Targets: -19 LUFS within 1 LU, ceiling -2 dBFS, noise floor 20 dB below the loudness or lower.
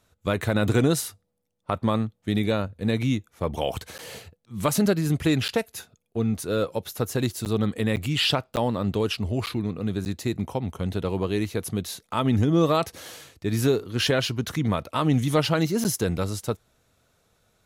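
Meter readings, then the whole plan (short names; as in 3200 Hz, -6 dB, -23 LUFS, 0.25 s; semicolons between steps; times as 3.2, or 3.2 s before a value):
dropouts 8; longest dropout 9.3 ms; loudness -25.5 LUFS; peak -9.0 dBFS; loudness target -19.0 LUFS
-> interpolate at 3.98/5.48/7.45/7.96/8.56/9.46/10.05/15.84, 9.3 ms; gain +6.5 dB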